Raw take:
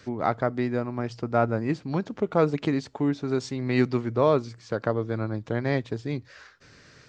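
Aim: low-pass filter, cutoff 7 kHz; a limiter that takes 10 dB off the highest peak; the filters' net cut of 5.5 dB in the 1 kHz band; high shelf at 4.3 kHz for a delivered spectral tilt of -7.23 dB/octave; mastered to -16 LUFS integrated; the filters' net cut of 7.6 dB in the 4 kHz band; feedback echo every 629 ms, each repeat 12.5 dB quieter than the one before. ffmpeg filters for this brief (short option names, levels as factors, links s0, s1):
-af "lowpass=7000,equalizer=f=1000:t=o:g=-7.5,equalizer=f=4000:t=o:g=-5.5,highshelf=f=4300:g=-5.5,alimiter=limit=0.0944:level=0:latency=1,aecho=1:1:629|1258|1887:0.237|0.0569|0.0137,volume=6.31"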